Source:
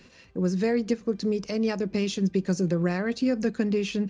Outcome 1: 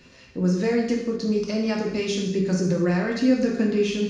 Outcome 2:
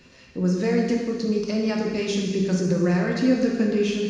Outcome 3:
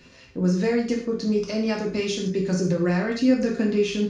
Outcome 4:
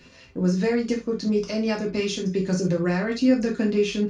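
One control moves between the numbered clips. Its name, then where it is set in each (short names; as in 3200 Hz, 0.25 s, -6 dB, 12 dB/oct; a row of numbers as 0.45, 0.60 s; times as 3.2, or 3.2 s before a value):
non-linear reverb, gate: 0.28, 0.52, 0.17, 0.1 s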